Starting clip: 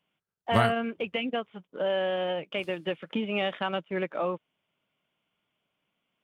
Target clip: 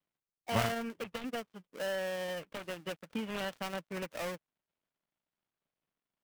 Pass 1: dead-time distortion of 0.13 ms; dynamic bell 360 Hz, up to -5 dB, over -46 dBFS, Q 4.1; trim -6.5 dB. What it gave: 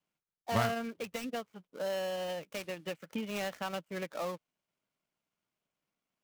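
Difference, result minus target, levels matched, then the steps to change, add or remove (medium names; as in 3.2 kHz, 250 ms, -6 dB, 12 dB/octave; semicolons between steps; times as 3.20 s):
dead-time distortion: distortion -7 dB
change: dead-time distortion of 0.31 ms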